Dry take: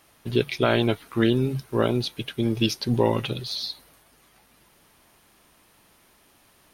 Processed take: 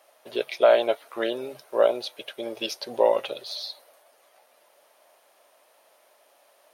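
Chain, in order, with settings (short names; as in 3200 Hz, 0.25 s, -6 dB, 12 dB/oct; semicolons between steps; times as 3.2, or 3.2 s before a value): resonant high-pass 590 Hz, resonance Q 4.9; gain -4 dB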